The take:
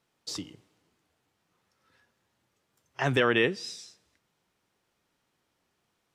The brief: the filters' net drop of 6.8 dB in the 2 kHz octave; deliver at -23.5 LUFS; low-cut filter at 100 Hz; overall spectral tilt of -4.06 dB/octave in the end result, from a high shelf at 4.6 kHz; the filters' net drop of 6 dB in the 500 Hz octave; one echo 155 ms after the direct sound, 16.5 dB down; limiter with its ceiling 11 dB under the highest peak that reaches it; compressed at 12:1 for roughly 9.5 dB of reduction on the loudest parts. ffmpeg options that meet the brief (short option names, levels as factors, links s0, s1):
-af "highpass=100,equalizer=f=500:t=o:g=-7,equalizer=f=2000:t=o:g=-7,highshelf=f=4600:g=-8,acompressor=threshold=0.0224:ratio=12,alimiter=level_in=2.24:limit=0.0631:level=0:latency=1,volume=0.447,aecho=1:1:155:0.15,volume=10"